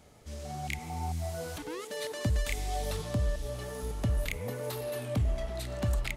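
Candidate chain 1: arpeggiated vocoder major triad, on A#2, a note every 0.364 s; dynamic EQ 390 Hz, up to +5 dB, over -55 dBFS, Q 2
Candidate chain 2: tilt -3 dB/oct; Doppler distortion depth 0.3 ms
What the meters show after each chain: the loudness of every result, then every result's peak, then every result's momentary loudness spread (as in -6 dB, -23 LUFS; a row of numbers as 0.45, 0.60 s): -38.0, -25.0 LUFS; -17.0, -9.5 dBFS; 10, 13 LU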